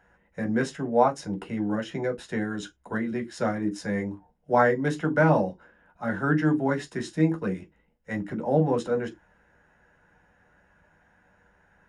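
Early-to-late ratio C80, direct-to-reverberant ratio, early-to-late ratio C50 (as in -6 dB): 34.0 dB, 3.0 dB, 22.5 dB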